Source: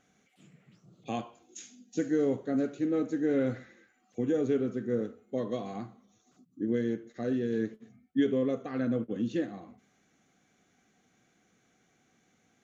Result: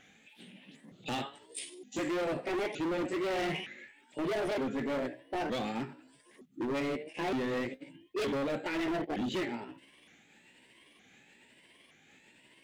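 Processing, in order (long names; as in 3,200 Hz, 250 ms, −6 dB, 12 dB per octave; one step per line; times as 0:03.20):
pitch shifter swept by a sawtooth +7 semitones, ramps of 916 ms
flat-topped bell 2,500 Hz +9.5 dB 1.3 octaves
in parallel at −2 dB: brickwall limiter −25 dBFS, peak gain reduction 10 dB
on the sum: hard clipping −30.5 dBFS, distortion −6 dB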